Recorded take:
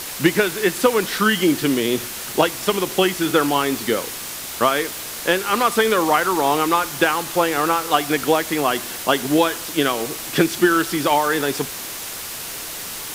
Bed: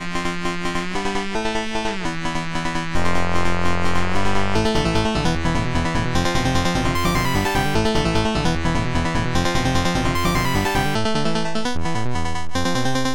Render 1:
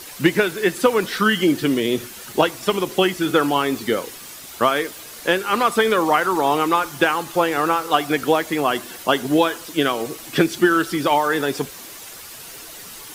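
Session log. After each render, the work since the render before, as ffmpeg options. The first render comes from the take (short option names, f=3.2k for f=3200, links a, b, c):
-af "afftdn=nr=9:nf=-31"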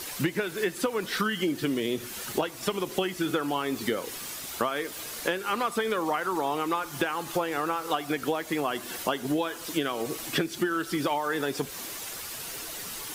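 -af "acompressor=threshold=-25dB:ratio=6"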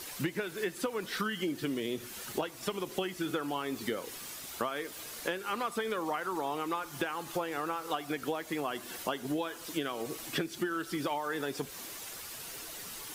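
-af "volume=-6dB"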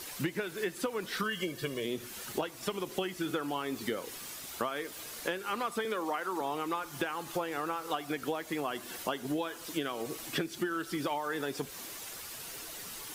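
-filter_complex "[0:a]asettb=1/sr,asplit=3[a][b][c];[a]atrim=end=1.234[d];[b]atrim=start=1.23:end=1.85,asetpts=PTS-STARTPTS,afade=t=in:d=0.004:c=qsin,afade=t=out:st=0.616:d=0.004:c=qsin,aecho=1:1:1.8:0.65,atrim=end_sample=27342[e];[c]atrim=start=1.846[f];[d][e]acrossfade=d=0.004:c1=hsin:c2=qsin[g];[g][f]acrossfade=d=0.004:c1=qsin:c2=hsin,asettb=1/sr,asplit=3[h][i][j];[h]atrim=end=5.854[k];[i]atrim=start=5.85:end=6.41,asetpts=PTS-STARTPTS,afade=t=in:d=0.004:c=qsin,afade=t=out:st=0.556:d=0.004:c=qsin,highpass=f=190:w=0.5412,highpass=f=190:w=1.3066[l];[j]atrim=start=6.406[m];[k][l]acrossfade=d=0.004:c1=hsin:c2=qsin[n];[n][m]acrossfade=d=0.004:c1=qsin:c2=hsin"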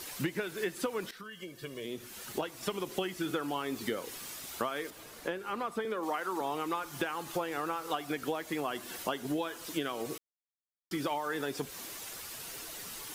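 -filter_complex "[0:a]asettb=1/sr,asplit=3[a][b][c];[a]atrim=end=4.904[d];[b]atrim=start=4.9:end=6.03,asetpts=PTS-STARTPTS,afade=t=in:d=0.004:c=qsin,afade=t=out:st=1.126:d=0.004:c=qsin,highshelf=f=2.1k:g=-9[e];[c]atrim=start=6.026[f];[d][e]acrossfade=d=0.004:c1=hsin:c2=qsin[g];[g][f]acrossfade=d=0.004:c1=qsin:c2=hsin,asplit=4[h][i][j][k];[h]atrim=end=1.11,asetpts=PTS-STARTPTS,afade=t=out:st=1.106:d=0.004:c=hsin:silence=0.141254[l];[i]atrim=start=1.11:end=10.18,asetpts=PTS-STARTPTS,afade=t=in:d=1.52:silence=0.141254,afade=t=out:st=9.066:d=0.004:c=hsin[m];[j]atrim=start=10.18:end=10.91,asetpts=PTS-STARTPTS,volume=0[n];[k]atrim=start=10.91,asetpts=PTS-STARTPTS,afade=t=in:d=0.004:c=hsin[o];[l][m][n][o]concat=n=4:v=0:a=1"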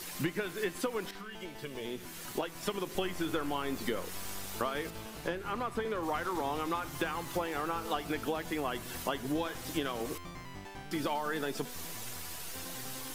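-filter_complex "[1:a]volume=-26.5dB[a];[0:a][a]amix=inputs=2:normalize=0"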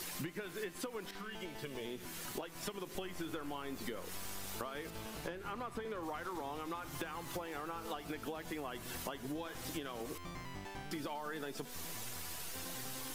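-af "acompressor=threshold=-40dB:ratio=4"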